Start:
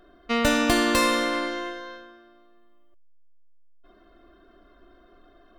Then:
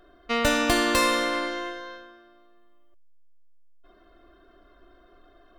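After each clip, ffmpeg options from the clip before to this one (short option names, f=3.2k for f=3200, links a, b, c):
-af "equalizer=f=220:t=o:w=0.87:g=-5"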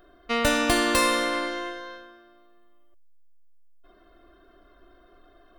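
-af "aexciter=amount=1.1:drive=6.8:freq=9.1k"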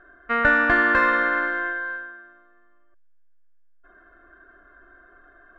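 -af "lowpass=f=1.6k:t=q:w=9.2,volume=-2dB"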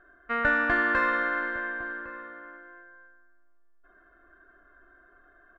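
-filter_complex "[0:a]asplit=2[a][b];[b]adelay=1108,volume=-14dB,highshelf=f=4k:g=-24.9[c];[a][c]amix=inputs=2:normalize=0,volume=-6dB"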